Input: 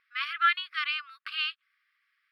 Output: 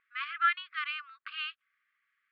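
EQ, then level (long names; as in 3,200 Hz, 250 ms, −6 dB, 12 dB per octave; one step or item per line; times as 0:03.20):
high-frequency loss of the air 390 metres
0.0 dB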